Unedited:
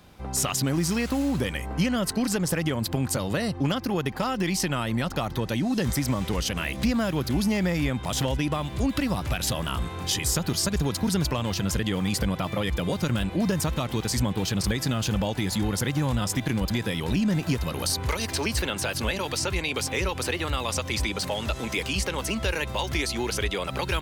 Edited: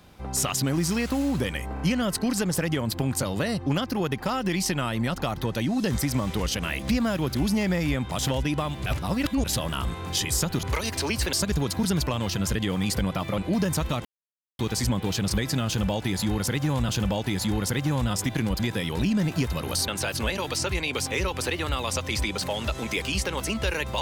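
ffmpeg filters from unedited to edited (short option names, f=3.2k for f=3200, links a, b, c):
-filter_complex "[0:a]asplit=11[a][b][c][d][e][f][g][h][i][j][k];[a]atrim=end=1.772[l];[b]atrim=start=1.738:end=1.772[m];[c]atrim=start=1.738:end=8.802[n];[d]atrim=start=8.798:end=9.382,asetpts=PTS-STARTPTS,areverse[o];[e]atrim=start=9.378:end=10.572[p];[f]atrim=start=17.988:end=18.692[q];[g]atrim=start=10.568:end=12.622[r];[h]atrim=start=13.248:end=13.92,asetpts=PTS-STARTPTS,afade=t=out:st=0.668:d=0.004:c=hsin,apad=pad_dur=0.54[s];[i]atrim=start=13.92:end=16.222,asetpts=PTS-STARTPTS,afade=t=in:d=0.004:c=hsin[t];[j]atrim=start=14.998:end=17.992[u];[k]atrim=start=18.688[v];[l][m]acrossfade=d=0.004:c1=hsin:c2=hsin[w];[w][n]acrossfade=d=0.004:c1=hsin:c2=hsin[x];[x][o]acrossfade=d=0.004:c1=hsin:c2=hsin[y];[y][p]acrossfade=d=0.004:c1=hsin:c2=hsin[z];[z][q]acrossfade=d=0.004:c1=hsin:c2=hsin[aa];[aa][r]acrossfade=d=0.004:c1=hsin:c2=hsin[ab];[s][t]concat=n=2:v=0:a=1[ac];[ab][ac]acrossfade=d=0.004:c1=hsin:c2=hsin[ad];[ad][u]acrossfade=d=0.004:c1=hsin:c2=hsin[ae];[ae][v]acrossfade=d=0.004:c1=hsin:c2=hsin"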